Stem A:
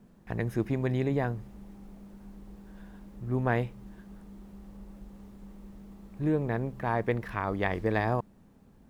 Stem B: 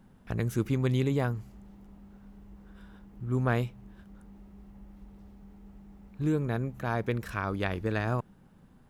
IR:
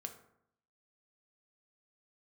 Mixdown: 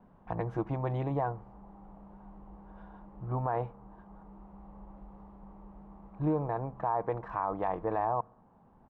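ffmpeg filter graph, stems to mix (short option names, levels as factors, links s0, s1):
-filter_complex "[0:a]lowpass=f=1100:t=q:w=2.3,equalizer=f=800:t=o:w=1.4:g=12.5,volume=0.316,asplit=3[s0][s1][s2];[s1]volume=0.0841[s3];[1:a]lowpass=2200,adelay=5.7,volume=0.562,asplit=2[s4][s5];[s5]volume=0.158[s6];[s2]apad=whole_len=392352[s7];[s4][s7]sidechaincompress=threshold=0.0158:ratio=3:attack=42:release=856[s8];[2:a]atrim=start_sample=2205[s9];[s3][s6]amix=inputs=2:normalize=0[s10];[s10][s9]afir=irnorm=-1:irlink=0[s11];[s0][s8][s11]amix=inputs=3:normalize=0,alimiter=limit=0.0944:level=0:latency=1:release=24"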